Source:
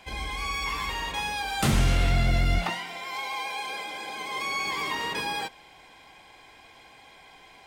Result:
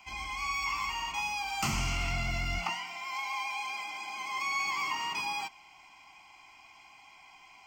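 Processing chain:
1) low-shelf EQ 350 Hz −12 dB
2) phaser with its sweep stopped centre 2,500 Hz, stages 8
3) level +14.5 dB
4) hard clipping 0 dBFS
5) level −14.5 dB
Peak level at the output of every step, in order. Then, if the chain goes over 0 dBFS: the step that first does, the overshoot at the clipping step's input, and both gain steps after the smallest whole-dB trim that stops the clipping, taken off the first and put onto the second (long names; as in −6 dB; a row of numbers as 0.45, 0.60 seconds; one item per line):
−14.5, −17.5, −3.0, −3.0, −17.5 dBFS
no step passes full scale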